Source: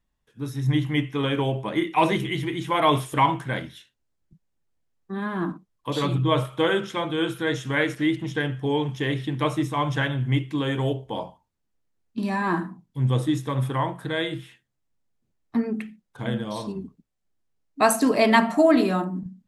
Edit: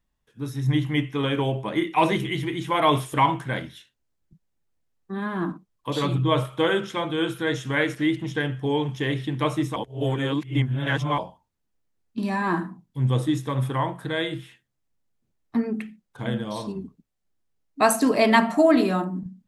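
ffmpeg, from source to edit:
-filter_complex "[0:a]asplit=3[s0][s1][s2];[s0]atrim=end=9.762[s3];[s1]atrim=start=9.758:end=11.182,asetpts=PTS-STARTPTS,areverse[s4];[s2]atrim=start=11.178[s5];[s3][s4]acrossfade=d=0.004:c1=hsin:c2=hsin[s6];[s6][s5]acrossfade=d=0.004:c1=hsin:c2=hsin"

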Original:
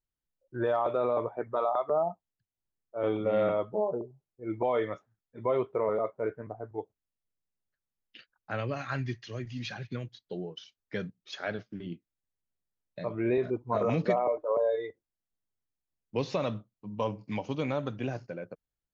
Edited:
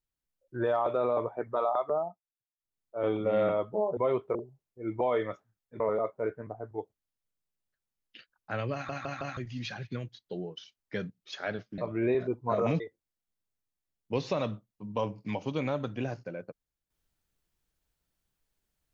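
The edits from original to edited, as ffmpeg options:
-filter_complex "[0:a]asplit=12[s0][s1][s2][s3][s4][s5][s6][s7][s8][s9][s10][s11];[s0]atrim=end=2.18,asetpts=PTS-STARTPTS,afade=t=out:st=1.77:d=0.41:c=qsin:silence=0.0749894[s12];[s1]atrim=start=2.18:end=2.57,asetpts=PTS-STARTPTS,volume=0.075[s13];[s2]atrim=start=2.57:end=3.972,asetpts=PTS-STARTPTS,afade=t=in:d=0.41:c=qsin:silence=0.0749894[s14];[s3]atrim=start=5.418:end=5.802[s15];[s4]atrim=start=3.968:end=5.422[s16];[s5]atrim=start=5.798:end=8.892[s17];[s6]atrim=start=8.728:end=8.892[s18];[s7]atrim=start=8.728:end=8.892[s19];[s8]atrim=start=8.728:end=8.892[s20];[s9]atrim=start=9.368:end=11.782[s21];[s10]atrim=start=13.008:end=14.032[s22];[s11]atrim=start=14.828[s23];[s12][s13][s14]concat=n=3:v=0:a=1[s24];[s24][s15]acrossfade=d=0.004:c1=hsin:c2=hsin[s25];[s25][s16]acrossfade=d=0.004:c1=hsin:c2=hsin[s26];[s26][s17]acrossfade=d=0.004:c1=hsin:c2=hsin[s27];[s27][s18]acrossfade=d=0.004:c1=hsin:c2=hsin[s28];[s28][s19]acrossfade=d=0.004:c1=hsin:c2=hsin[s29];[s29][s20]acrossfade=d=0.004:c1=hsin:c2=hsin[s30];[s30][s21]acrossfade=d=0.004:c1=hsin:c2=hsin[s31];[s31][s22]acrossfade=d=0.004:c1=hsin:c2=hsin[s32];[s32][s23]acrossfade=d=0.004:c1=hsin:c2=hsin"

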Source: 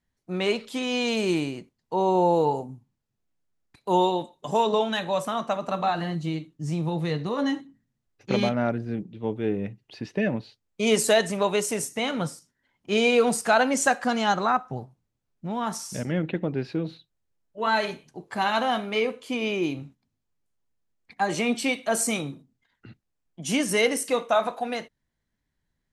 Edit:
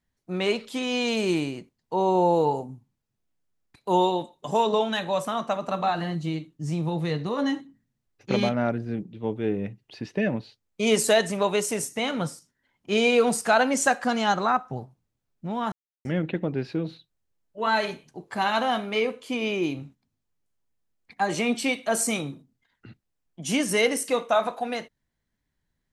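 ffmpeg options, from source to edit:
-filter_complex "[0:a]asplit=3[s0][s1][s2];[s0]atrim=end=15.72,asetpts=PTS-STARTPTS,afade=t=out:st=15.716:d=0.004:c=hsin[s3];[s1]atrim=start=15.72:end=16.05,asetpts=PTS-STARTPTS,volume=0[s4];[s2]atrim=start=16.05,asetpts=PTS-STARTPTS,afade=t=in:d=0.004:c=hsin[s5];[s3][s4][s5]concat=n=3:v=0:a=1"

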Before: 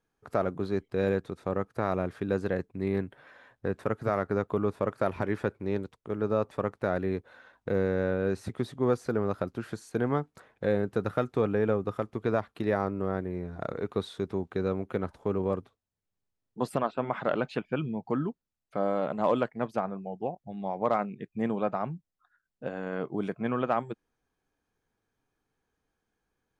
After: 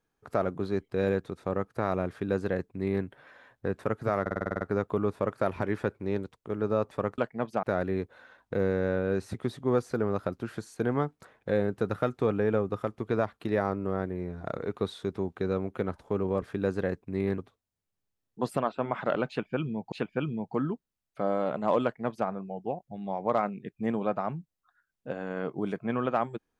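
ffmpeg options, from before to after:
-filter_complex "[0:a]asplit=14[s0][s1][s2][s3][s4][s5][s6][s7][s8][s9][s10][s11][s12][s13];[s0]atrim=end=4.262[s14];[s1]atrim=start=4.208:end=4.262[s15];[s2]atrim=start=4.208:end=4.262[s16];[s3]atrim=start=4.208:end=4.262[s17];[s4]atrim=start=4.208:end=4.262[s18];[s5]atrim=start=4.208:end=4.262[s19];[s6]atrim=start=4.208:end=4.262[s20];[s7]atrim=start=4.208:end=4.262[s21];[s8]atrim=start=4.208:end=6.782[s22];[s9]atrim=start=19.388:end=19.842[s23];[s10]atrim=start=6.778:end=15.572[s24];[s11]atrim=start=2.088:end=3.052[s25];[s12]atrim=start=15.568:end=18.112[s26];[s13]atrim=start=17.478[s27];[s14][s15]acrossfade=d=0.004:c1=hsin:c2=hsin[s28];[s28][s16]acrossfade=d=0.004:c1=hsin:c2=hsin[s29];[s29][s17]acrossfade=d=0.004:c1=hsin:c2=hsin[s30];[s30][s18]acrossfade=d=0.004:c1=hsin:c2=hsin[s31];[s31][s19]acrossfade=d=0.004:c1=hsin:c2=hsin[s32];[s32][s20]acrossfade=d=0.004:c1=hsin:c2=hsin[s33];[s33][s21]acrossfade=d=0.004:c1=hsin:c2=hsin[s34];[s34][s22]acrossfade=d=0.004:c1=hsin:c2=hsin[s35];[s35][s23]acrossfade=d=0.004:c1=hsin:c2=hsin[s36];[s36][s24]acrossfade=d=0.004:c1=hsin:c2=hsin[s37];[s37][s25]acrossfade=d=0.004:c1=hsin:c2=hsin[s38];[s38][s26]acrossfade=d=0.004:c1=hsin:c2=hsin[s39];[s39][s27]acrossfade=d=0.004:c1=hsin:c2=hsin"

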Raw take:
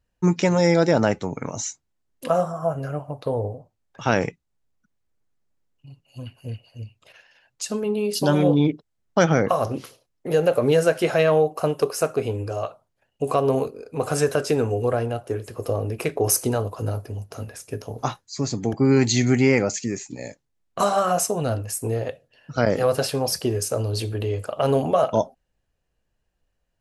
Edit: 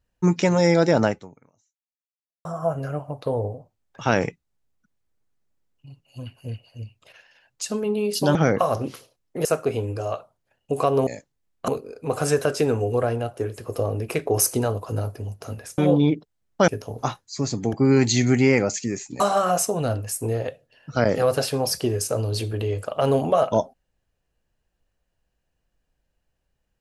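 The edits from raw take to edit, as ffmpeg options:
-filter_complex "[0:a]asplit=9[s0][s1][s2][s3][s4][s5][s6][s7][s8];[s0]atrim=end=2.45,asetpts=PTS-STARTPTS,afade=t=out:st=1.06:d=1.39:c=exp[s9];[s1]atrim=start=2.45:end=8.352,asetpts=PTS-STARTPTS,afade=t=in:d=0.004:c=hsin[s10];[s2]atrim=start=9.248:end=10.352[s11];[s3]atrim=start=11.958:end=13.582[s12];[s4]atrim=start=20.198:end=20.812[s13];[s5]atrim=start=13.578:end=17.682[s14];[s6]atrim=start=8.348:end=9.252[s15];[s7]atrim=start=17.678:end=20.202[s16];[s8]atrim=start=20.808[s17];[s9][s10]concat=n=2:v=0:a=1[s18];[s18][s11]acrossfade=d=0.004:c1=hsin:c2=hsin[s19];[s19][s12]acrossfade=d=0.004:c1=hsin:c2=hsin[s20];[s20][s13]acrossfade=d=0.004:c1=hsin:c2=hsin[s21];[s21][s14]acrossfade=d=0.004:c1=hsin:c2=hsin[s22];[s22][s15]acrossfade=d=0.004:c1=hsin:c2=hsin[s23];[s23][s16]acrossfade=d=0.004:c1=hsin:c2=hsin[s24];[s24][s17]acrossfade=d=0.004:c1=hsin:c2=hsin"

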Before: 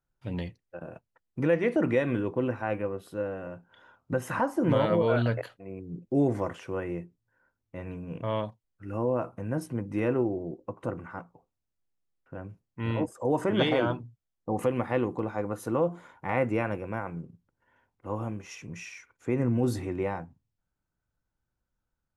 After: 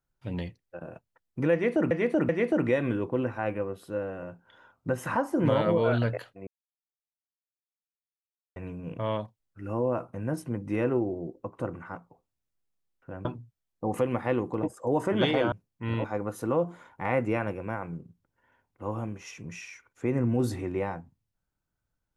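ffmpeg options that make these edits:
-filter_complex "[0:a]asplit=9[s0][s1][s2][s3][s4][s5][s6][s7][s8];[s0]atrim=end=1.912[s9];[s1]atrim=start=1.528:end=1.912[s10];[s2]atrim=start=1.528:end=5.71,asetpts=PTS-STARTPTS,afade=t=out:st=4.178:d=0.004:c=hsin[s11];[s3]atrim=start=5.71:end=7.8,asetpts=PTS-STARTPTS,volume=0[s12];[s4]atrim=start=7.8:end=12.492,asetpts=PTS-STARTPTS,afade=t=in:d=0.004:c=hsin[s13];[s5]atrim=start=13.898:end=15.282[s14];[s6]atrim=start=13.008:end=13.902[s15];[s7]atrim=start=12.488:end=13.012[s16];[s8]atrim=start=15.278[s17];[s9][s10]acrossfade=d=0.004:c1=hsin:c2=hsin[s18];[s11][s12][s13]concat=n=3:v=0:a=1[s19];[s18][s19]acrossfade=d=0.004:c1=hsin:c2=hsin[s20];[s20][s14]acrossfade=d=0.004:c1=hsin:c2=hsin[s21];[s21][s15]acrossfade=d=0.004:c1=hsin:c2=hsin[s22];[s22][s16]acrossfade=d=0.004:c1=hsin:c2=hsin[s23];[s23][s17]acrossfade=d=0.004:c1=hsin:c2=hsin"

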